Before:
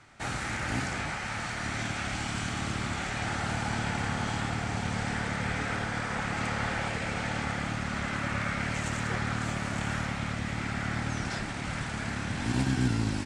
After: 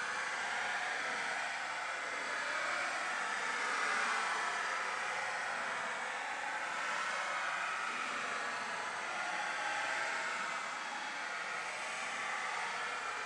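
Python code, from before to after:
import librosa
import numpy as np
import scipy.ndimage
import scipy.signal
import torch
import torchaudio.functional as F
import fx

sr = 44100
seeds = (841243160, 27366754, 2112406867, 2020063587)

y = fx.over_compress(x, sr, threshold_db=-34.0, ratio=-0.5)
y = scipy.signal.sosfilt(scipy.signal.butter(2, 660.0, 'highpass', fs=sr, output='sos'), y)
y = fx.echo_split(y, sr, split_hz=1200.0, low_ms=218, high_ms=410, feedback_pct=52, wet_db=-7.5)
y = fx.paulstretch(y, sr, seeds[0], factor=21.0, window_s=0.05, from_s=5.89)
y = F.gain(torch.from_numpy(y), -1.5).numpy()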